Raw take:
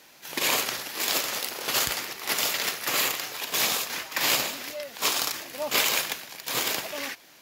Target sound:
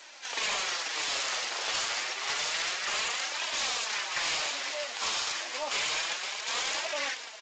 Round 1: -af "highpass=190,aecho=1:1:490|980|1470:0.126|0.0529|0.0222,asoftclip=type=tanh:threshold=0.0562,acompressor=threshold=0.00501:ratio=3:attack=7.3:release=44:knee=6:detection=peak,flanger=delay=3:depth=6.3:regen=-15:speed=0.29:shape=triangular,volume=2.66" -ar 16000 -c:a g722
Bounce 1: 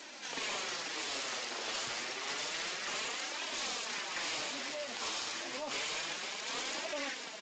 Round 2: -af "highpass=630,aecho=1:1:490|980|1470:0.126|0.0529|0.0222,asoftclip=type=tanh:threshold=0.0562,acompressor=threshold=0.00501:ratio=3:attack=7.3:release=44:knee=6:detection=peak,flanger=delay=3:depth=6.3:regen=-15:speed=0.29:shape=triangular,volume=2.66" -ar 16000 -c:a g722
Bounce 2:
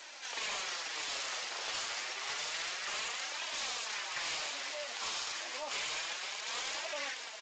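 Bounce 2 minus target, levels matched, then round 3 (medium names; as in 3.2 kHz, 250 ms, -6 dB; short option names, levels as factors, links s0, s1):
compression: peak gain reduction +7 dB
-af "highpass=630,aecho=1:1:490|980|1470:0.126|0.0529|0.0222,asoftclip=type=tanh:threshold=0.0562,acompressor=threshold=0.0168:ratio=3:attack=7.3:release=44:knee=6:detection=peak,flanger=delay=3:depth=6.3:regen=-15:speed=0.29:shape=triangular,volume=2.66" -ar 16000 -c:a g722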